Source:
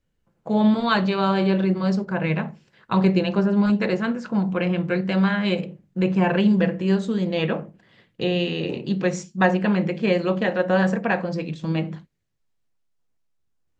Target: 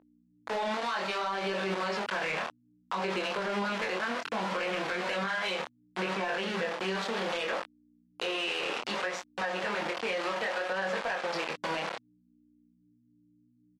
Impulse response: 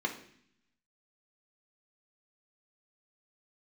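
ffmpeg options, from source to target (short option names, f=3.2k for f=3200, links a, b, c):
-filter_complex "[0:a]dynaudnorm=f=160:g=13:m=6dB,asettb=1/sr,asplit=3[a][b][c];[a]atrim=end=8.384[d];[b]atrim=start=8.38:end=9.23,asetpts=PTS-STARTPTS,afade=t=in:d=0.004:c=qsin,afade=t=out:st=0.846:d=0.004:c=qsin,equalizer=f=1.3k:t=o:w=2:g=10.5[e];[c]atrim=start=9.226[f];[d][e]acrossfade=d=0.004:c1=hsin:c2=qsin[g];[g][f]acrossfade=d=0.004:c1=qsin:c2=hsin,asplit=2[h][i];[i]adelay=895,lowpass=f=1.3k:p=1,volume=-22dB,asplit=2[j][k];[k]adelay=895,lowpass=f=1.3k:p=1,volume=0.27[l];[h][j][l]amix=inputs=3:normalize=0,aeval=exprs='val(0)*gte(abs(val(0)),0.075)':c=same,aeval=exprs='val(0)+0.00708*(sin(2*PI*60*n/s)+sin(2*PI*2*60*n/s)/2+sin(2*PI*3*60*n/s)/3+sin(2*PI*4*60*n/s)/4+sin(2*PI*5*60*n/s)/5)':c=same,highpass=650,lowpass=4.2k,acompressor=threshold=-24dB:ratio=16,asoftclip=type=tanh:threshold=-20dB,flanger=delay=20:depth=6.7:speed=0.64,alimiter=level_in=6.5dB:limit=-24dB:level=0:latency=1:release=50,volume=-6.5dB,volume=7dB" -ar 44100 -c:a libmp3lame -b:a 64k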